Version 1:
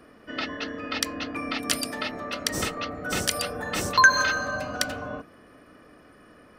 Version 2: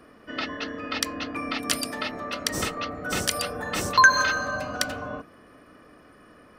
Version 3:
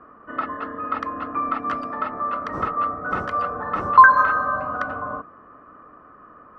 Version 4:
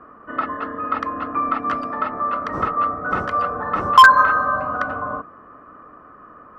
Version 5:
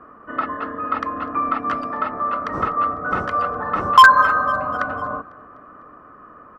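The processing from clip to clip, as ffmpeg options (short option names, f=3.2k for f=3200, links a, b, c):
-af "equalizer=f=1.1k:w=4.1:g=2.5"
-af "lowpass=f=1.2k:t=q:w=4.7,volume=-1dB"
-af "aeval=exprs='0.596*(abs(mod(val(0)/0.596+3,4)-2)-1)':c=same,volume=3dB"
-af "aecho=1:1:250|500|750|1000:0.0668|0.0394|0.0233|0.0137"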